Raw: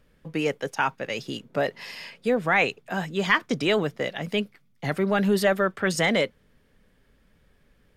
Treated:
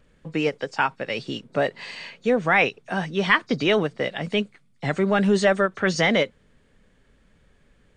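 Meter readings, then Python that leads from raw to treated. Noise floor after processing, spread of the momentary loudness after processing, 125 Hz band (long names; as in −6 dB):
−60 dBFS, 11 LU, +2.5 dB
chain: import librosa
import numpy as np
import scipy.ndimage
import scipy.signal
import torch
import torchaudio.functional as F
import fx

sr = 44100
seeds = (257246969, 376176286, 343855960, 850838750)

y = fx.freq_compress(x, sr, knee_hz=3700.0, ratio=1.5)
y = fx.end_taper(y, sr, db_per_s=480.0)
y = F.gain(torch.from_numpy(y), 2.5).numpy()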